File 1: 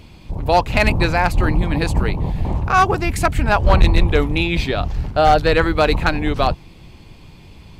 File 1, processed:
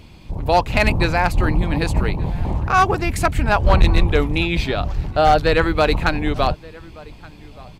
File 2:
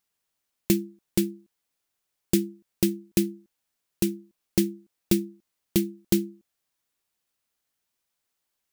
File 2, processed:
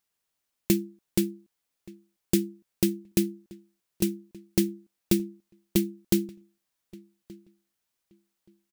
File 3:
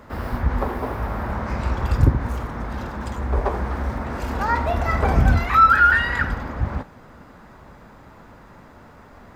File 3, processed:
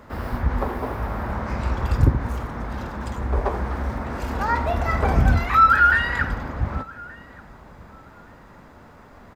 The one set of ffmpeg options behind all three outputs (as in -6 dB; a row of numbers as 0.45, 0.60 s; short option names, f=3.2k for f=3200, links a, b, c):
-filter_complex "[0:a]asplit=2[a][b];[b]adelay=1176,lowpass=f=3k:p=1,volume=-22.5dB,asplit=2[c][d];[d]adelay=1176,lowpass=f=3k:p=1,volume=0.19[e];[a][c][e]amix=inputs=3:normalize=0,volume=-1dB"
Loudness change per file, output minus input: -1.0, -1.5, -1.0 LU